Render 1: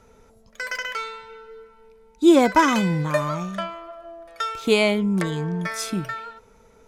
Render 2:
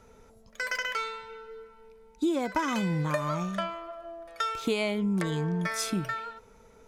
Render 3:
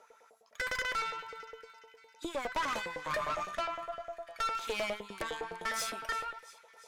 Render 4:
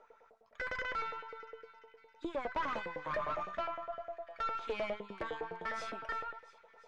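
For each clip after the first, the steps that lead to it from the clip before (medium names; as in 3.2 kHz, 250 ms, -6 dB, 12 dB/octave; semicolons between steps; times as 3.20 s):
compression 16:1, threshold -22 dBFS, peak gain reduction 13.5 dB; trim -2 dB
feedback echo behind a high-pass 343 ms, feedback 61%, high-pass 2.5 kHz, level -16 dB; LFO high-pass saw up 9.8 Hz 480–2000 Hz; valve stage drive 28 dB, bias 0.6; trim -1 dB
partial rectifier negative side -3 dB; tape spacing loss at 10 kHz 29 dB; trim +2.5 dB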